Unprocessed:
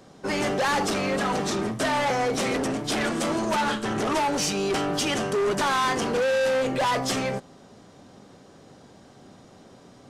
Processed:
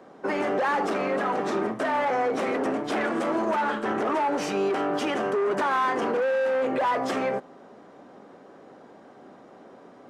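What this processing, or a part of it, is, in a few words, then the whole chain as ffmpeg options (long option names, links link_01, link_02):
DJ mixer with the lows and highs turned down: -filter_complex "[0:a]acrossover=split=230 2200:gain=0.1 1 0.141[link_01][link_02][link_03];[link_01][link_02][link_03]amix=inputs=3:normalize=0,alimiter=limit=-22dB:level=0:latency=1:release=55,volume=4dB"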